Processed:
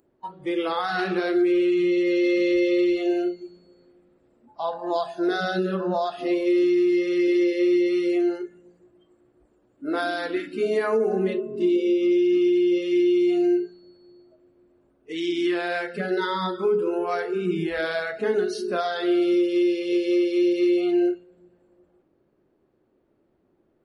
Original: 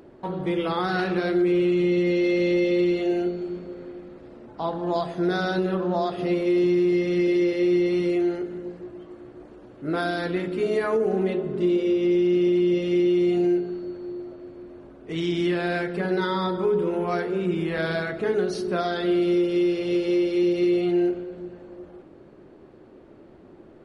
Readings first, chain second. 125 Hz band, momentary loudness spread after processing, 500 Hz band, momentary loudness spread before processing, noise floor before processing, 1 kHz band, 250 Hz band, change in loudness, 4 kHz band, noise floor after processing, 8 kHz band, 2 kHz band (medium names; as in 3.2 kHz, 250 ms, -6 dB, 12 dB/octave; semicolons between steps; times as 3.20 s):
-8.5 dB, 8 LU, +0.5 dB, 15 LU, -49 dBFS, +0.5 dB, +0.5 dB, +0.5 dB, +1.0 dB, -67 dBFS, no reading, +1.0 dB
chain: spectral noise reduction 19 dB; trim +1 dB